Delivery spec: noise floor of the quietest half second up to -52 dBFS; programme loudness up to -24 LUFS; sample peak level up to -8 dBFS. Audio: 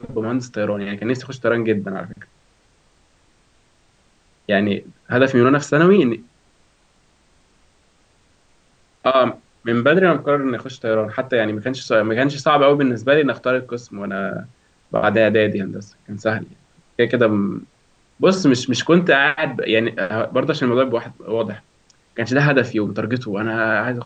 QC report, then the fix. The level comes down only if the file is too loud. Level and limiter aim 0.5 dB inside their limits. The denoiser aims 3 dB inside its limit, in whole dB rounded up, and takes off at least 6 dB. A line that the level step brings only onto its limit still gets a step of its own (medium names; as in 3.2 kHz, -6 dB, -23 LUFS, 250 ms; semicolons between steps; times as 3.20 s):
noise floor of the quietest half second -58 dBFS: pass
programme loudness -18.5 LUFS: fail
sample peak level -2.5 dBFS: fail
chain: trim -6 dB